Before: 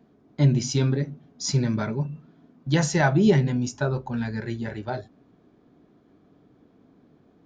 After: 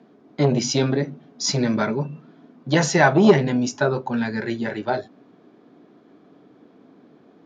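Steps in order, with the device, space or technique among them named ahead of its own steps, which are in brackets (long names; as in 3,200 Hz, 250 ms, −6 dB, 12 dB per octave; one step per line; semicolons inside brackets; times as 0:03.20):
public-address speaker with an overloaded transformer (saturating transformer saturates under 370 Hz; band-pass filter 220–6,000 Hz)
level +8 dB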